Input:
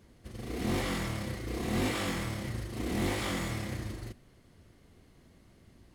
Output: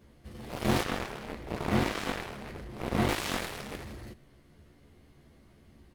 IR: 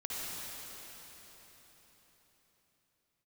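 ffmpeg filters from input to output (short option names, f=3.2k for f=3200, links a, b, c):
-filter_complex "[0:a]equalizer=f=7.2k:t=o:w=1.3:g=-4.5,asplit=2[a][b];[b]adelay=14,volume=-2dB[c];[a][c]amix=inputs=2:normalize=0,aeval=exprs='0.133*(cos(1*acos(clip(val(0)/0.133,-1,1)))-cos(1*PI/2))+0.0335*(cos(7*acos(clip(val(0)/0.133,-1,1)))-cos(7*PI/2))':c=same,asettb=1/sr,asplit=3[d][e][f];[d]atrim=end=0.844[g];[e]atrim=start=0.84:end=3.09,asetpts=PTS-STARTPTS,afade=t=in:d=0.004:c=qsin,afade=t=out:st=2.246:d=0.004:c=qsin,highshelf=f=3.3k:g=-8.5[h];[f]atrim=start=3.086[i];[g][h]acrossfade=d=0.004:c1=hsin:c2=qsin[j];[j][i]acrossfade=d=0.004:c1=qsin:c2=hsin,volume=1.5dB"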